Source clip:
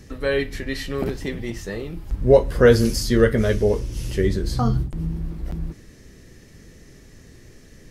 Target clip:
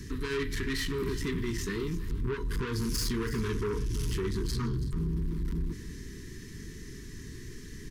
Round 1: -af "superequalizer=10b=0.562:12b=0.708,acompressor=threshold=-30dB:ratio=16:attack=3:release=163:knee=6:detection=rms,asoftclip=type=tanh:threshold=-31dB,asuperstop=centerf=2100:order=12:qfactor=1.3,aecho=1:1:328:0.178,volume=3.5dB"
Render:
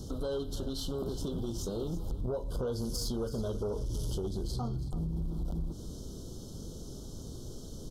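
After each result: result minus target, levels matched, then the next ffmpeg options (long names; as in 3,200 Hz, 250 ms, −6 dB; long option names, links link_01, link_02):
2,000 Hz band −17.5 dB; downward compressor: peak gain reduction +9 dB
-af "superequalizer=10b=0.562:12b=0.708,acompressor=threshold=-30dB:ratio=16:attack=3:release=163:knee=6:detection=rms,asoftclip=type=tanh:threshold=-31dB,asuperstop=centerf=650:order=12:qfactor=1.3,aecho=1:1:328:0.178,volume=3.5dB"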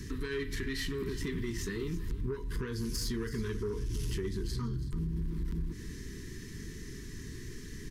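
downward compressor: peak gain reduction +9 dB
-af "superequalizer=10b=0.562:12b=0.708,acompressor=threshold=-20.5dB:ratio=16:attack=3:release=163:knee=6:detection=rms,asoftclip=type=tanh:threshold=-31dB,asuperstop=centerf=650:order=12:qfactor=1.3,aecho=1:1:328:0.178,volume=3.5dB"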